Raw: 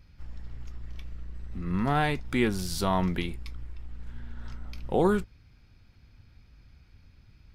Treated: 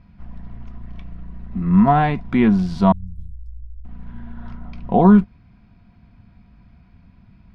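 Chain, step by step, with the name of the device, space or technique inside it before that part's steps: inside a cardboard box (low-pass 2.8 kHz 12 dB/octave; small resonant body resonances 200/700/980 Hz, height 15 dB, ringing for 55 ms); 2.92–3.85 s: inverse Chebyshev band-stop 410–2000 Hz, stop band 80 dB; trim +3.5 dB

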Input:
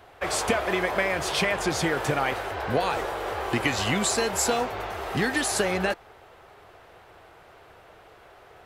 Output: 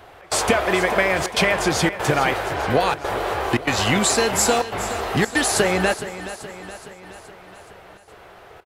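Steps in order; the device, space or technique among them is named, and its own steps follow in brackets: trance gate with a delay (trance gate "xx.xxxxxxxxx.xxx" 143 bpm -24 dB; feedback delay 422 ms, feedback 57%, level -13.5 dB); trim +6 dB

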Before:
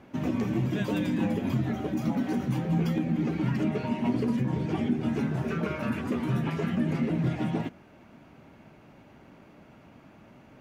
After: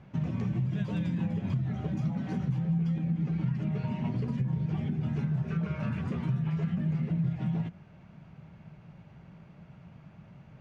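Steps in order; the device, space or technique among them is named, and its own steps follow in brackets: jukebox (low-pass 6 kHz 12 dB/octave; resonant low shelf 210 Hz +7.5 dB, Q 3; compression 4:1, threshold -23 dBFS, peak gain reduction 11 dB); trim -4.5 dB

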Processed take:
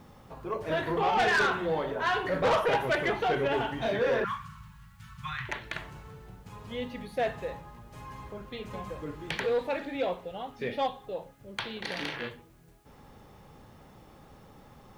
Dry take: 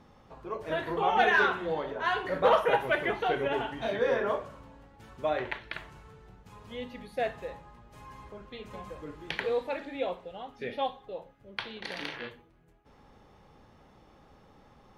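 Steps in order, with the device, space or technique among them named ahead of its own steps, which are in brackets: 4.24–5.49 s: elliptic band-stop 180–1100 Hz, stop band 40 dB; open-reel tape (saturation -24.5 dBFS, distortion -10 dB; peaking EQ 130 Hz +4 dB 1.15 oct; white noise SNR 39 dB); trim +3.5 dB

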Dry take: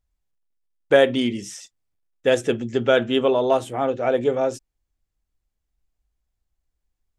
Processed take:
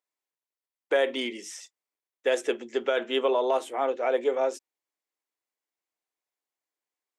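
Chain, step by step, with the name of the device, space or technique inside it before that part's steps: laptop speaker (high-pass 330 Hz 24 dB/octave; peaking EQ 1 kHz +4.5 dB 0.32 oct; peaking EQ 2.1 kHz +4.5 dB 0.37 oct; peak limiter -10.5 dBFS, peak gain reduction 7 dB); trim -4 dB

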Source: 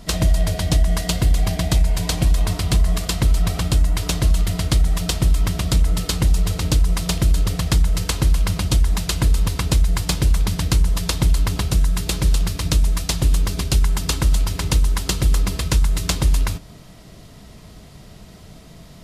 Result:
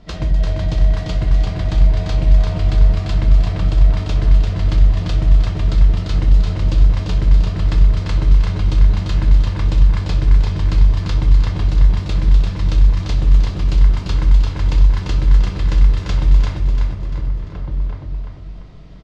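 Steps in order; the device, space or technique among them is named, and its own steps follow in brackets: shout across a valley (distance through air 180 m; echo from a far wall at 250 m, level -6 dB); feedback delay 344 ms, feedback 44%, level -4 dB; simulated room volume 67 m³, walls mixed, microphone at 0.45 m; trim -4.5 dB

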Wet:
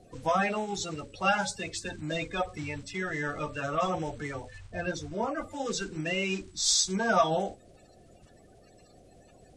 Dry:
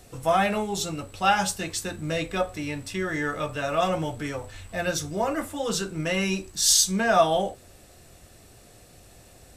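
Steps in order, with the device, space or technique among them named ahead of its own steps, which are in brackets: clip after many re-uploads (low-pass 7.7 kHz 24 dB/octave; coarse spectral quantiser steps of 30 dB); 4.58–5.51 s: treble shelf 3.1 kHz -8.5 dB; trim -4 dB

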